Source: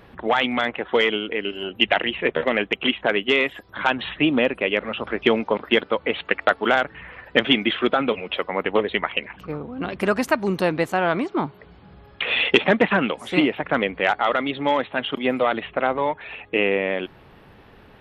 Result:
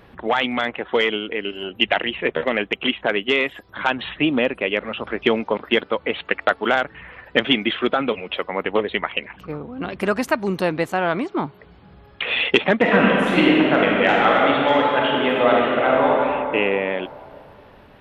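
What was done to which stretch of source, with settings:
0:12.78–0:16.15: thrown reverb, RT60 2.8 s, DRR −4 dB

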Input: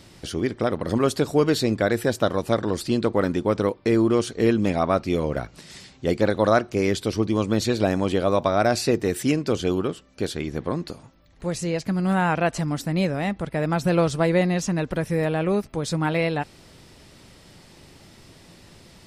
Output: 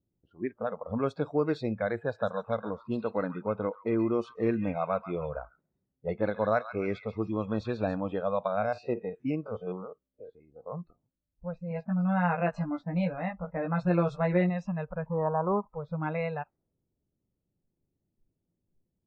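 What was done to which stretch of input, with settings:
0:02.00–0:07.95: delay with a high-pass on its return 137 ms, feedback 44%, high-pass 1,600 Hz, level −5 dB
0:08.47–0:10.72: spectrum averaged block by block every 50 ms
0:11.69–0:14.50: double-tracking delay 17 ms −3 dB
0:15.06–0:15.70: low-pass with resonance 1,000 Hz, resonance Q 7.7
whole clip: noise reduction from a noise print of the clip's start 23 dB; low-pass that shuts in the quiet parts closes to 400 Hz, open at −16 dBFS; low-pass filter 2,200 Hz 12 dB per octave; level −7.5 dB

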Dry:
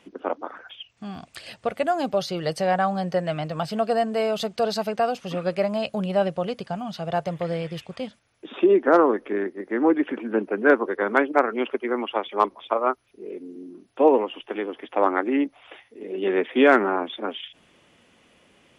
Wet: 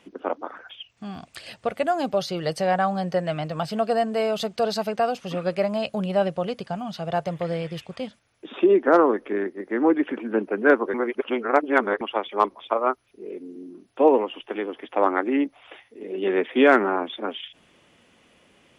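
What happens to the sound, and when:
0:10.94–0:12.01: reverse

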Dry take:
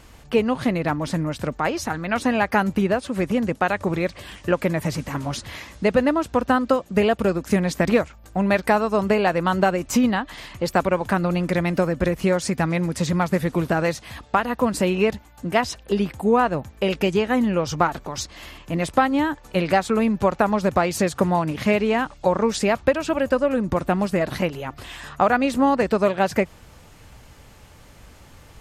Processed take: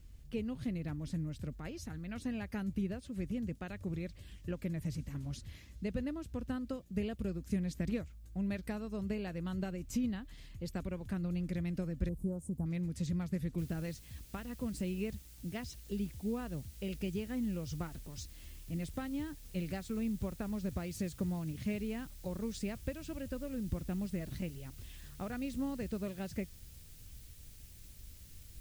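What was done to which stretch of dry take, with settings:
0:12.09–0:12.66: Chebyshev band-stop filter 980–8,700 Hz, order 3
0:13.58: noise floor change −61 dB −41 dB
whole clip: guitar amp tone stack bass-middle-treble 10-0-1; level +2.5 dB

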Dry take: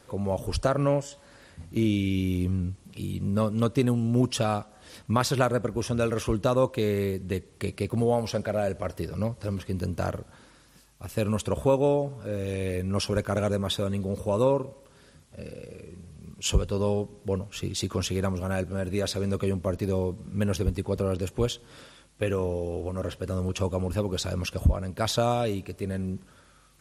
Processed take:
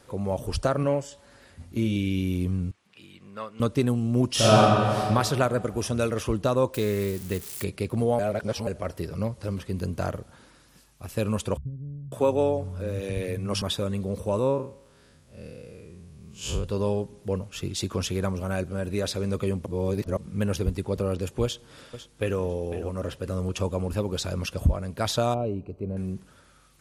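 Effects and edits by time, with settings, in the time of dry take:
0:00.83–0:01.96: notch comb filter 160 Hz
0:02.71–0:03.60: resonant band-pass 1,800 Hz, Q 1
0:04.30–0:04.98: thrown reverb, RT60 2.3 s, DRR −11 dB
0:05.58–0:06.09: high-shelf EQ 5,200 Hz +6.5 dB
0:06.74–0:07.64: spike at every zero crossing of −28 dBFS
0:08.19–0:08.67: reverse
0:11.57–0:13.62: multiband delay without the direct sound lows, highs 550 ms, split 160 Hz
0:14.39–0:16.64: spectrum smeared in time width 106 ms
0:19.66–0:20.17: reverse
0:21.43–0:22.39: delay throw 500 ms, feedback 20%, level −12.5 dB
0:25.34–0:25.97: moving average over 25 samples

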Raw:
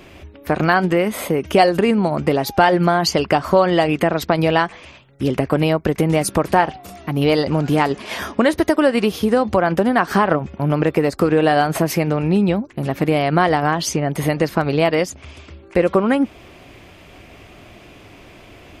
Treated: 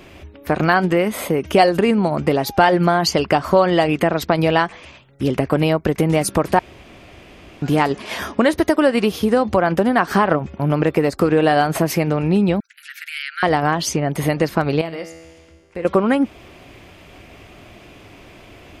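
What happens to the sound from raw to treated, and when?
0:06.59–0:07.62: fill with room tone
0:12.60–0:13.43: Butterworth high-pass 1,400 Hz 96 dB per octave
0:14.81–0:15.85: tuned comb filter 82 Hz, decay 1.6 s, mix 80%

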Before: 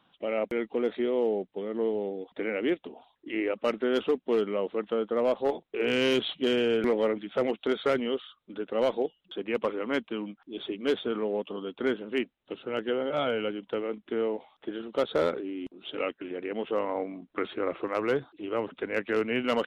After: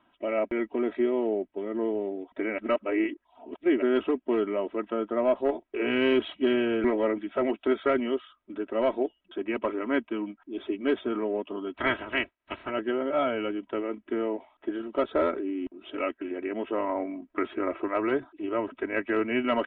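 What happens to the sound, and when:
0:02.58–0:03.82: reverse
0:11.74–0:12.69: ceiling on every frequency bin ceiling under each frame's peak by 24 dB
whole clip: low-pass filter 2,600 Hz 24 dB per octave; comb filter 3.1 ms, depth 78%

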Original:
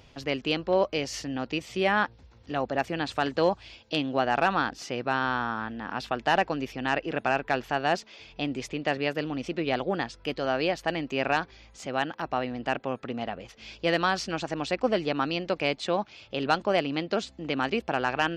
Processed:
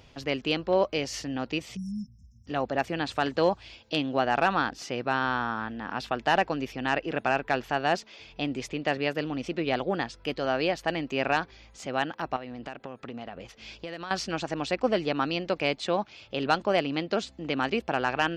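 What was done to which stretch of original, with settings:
0:01.76–0:02.47: time-frequency box erased 250–5,100 Hz
0:12.36–0:14.11: downward compressor, threshold −34 dBFS

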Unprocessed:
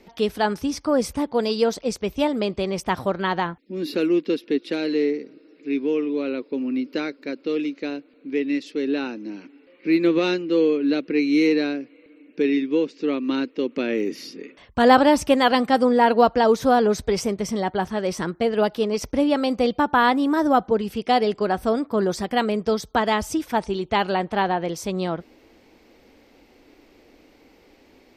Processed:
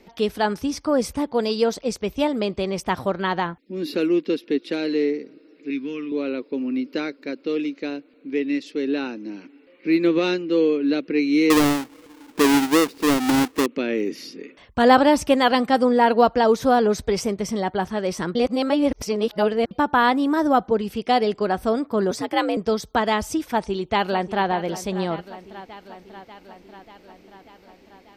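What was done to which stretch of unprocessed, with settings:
0:05.70–0:06.12: flat-topped bell 550 Hz −11.5 dB
0:11.50–0:13.66: each half-wave held at its own peak
0:18.35–0:19.71: reverse
0:22.11–0:22.57: frequency shifter +71 Hz
0:23.45–0:24.47: delay throw 590 ms, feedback 70%, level −14 dB

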